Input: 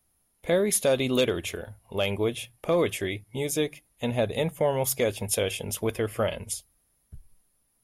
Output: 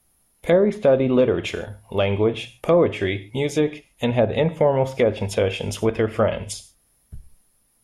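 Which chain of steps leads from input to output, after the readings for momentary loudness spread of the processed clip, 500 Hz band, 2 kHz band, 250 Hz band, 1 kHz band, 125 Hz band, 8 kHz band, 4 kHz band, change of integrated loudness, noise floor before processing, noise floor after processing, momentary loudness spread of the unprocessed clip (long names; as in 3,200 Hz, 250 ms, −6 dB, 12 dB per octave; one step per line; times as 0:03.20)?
11 LU, +7.0 dB, +4.0 dB, +7.5 dB, +6.5 dB, +7.5 dB, −7.5 dB, +0.5 dB, +6.0 dB, −71 dBFS, −64 dBFS, 11 LU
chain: reverb whose tail is shaped and stops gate 170 ms falling, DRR 11.5 dB
treble cut that deepens with the level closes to 1,200 Hz, closed at −20 dBFS
level +7 dB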